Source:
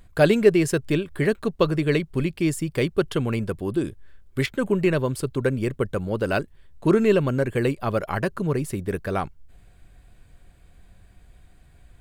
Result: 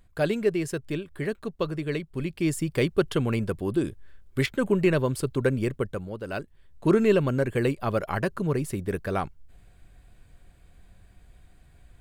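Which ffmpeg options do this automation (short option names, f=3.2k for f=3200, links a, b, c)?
-af "volume=9dB,afade=t=in:st=2.14:d=0.48:silence=0.446684,afade=t=out:st=5.59:d=0.61:silence=0.281838,afade=t=in:st=6.2:d=0.72:silence=0.316228"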